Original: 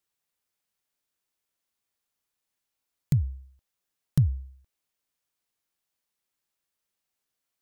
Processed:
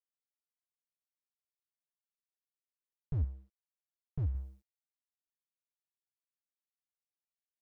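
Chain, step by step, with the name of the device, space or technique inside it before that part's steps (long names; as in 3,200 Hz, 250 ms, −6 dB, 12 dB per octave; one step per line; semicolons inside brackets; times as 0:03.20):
0:03.24–0:04.35: bass and treble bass −5 dB, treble −12 dB
early transistor amplifier (dead-zone distortion −57 dBFS; slew-rate limiting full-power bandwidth 3.5 Hz)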